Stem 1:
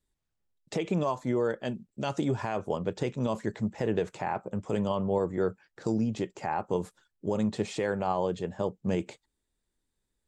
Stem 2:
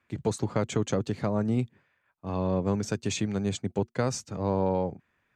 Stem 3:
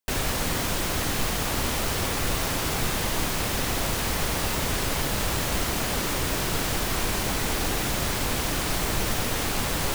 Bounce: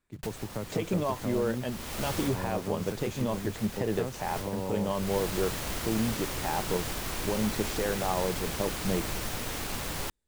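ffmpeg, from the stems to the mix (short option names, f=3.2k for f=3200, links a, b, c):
-filter_complex "[0:a]volume=-1.5dB[a];[1:a]equalizer=f=4.7k:w=0.39:g=-6,acrusher=bits=5:mode=log:mix=0:aa=0.000001,volume=-8.5dB,asplit=2[b][c];[2:a]acrusher=bits=2:mode=log:mix=0:aa=0.000001,adelay=150,volume=-8.5dB[d];[c]apad=whole_len=445359[e];[d][e]sidechaincompress=threshold=-40dB:ratio=12:attack=9.8:release=486[f];[a][b][f]amix=inputs=3:normalize=0"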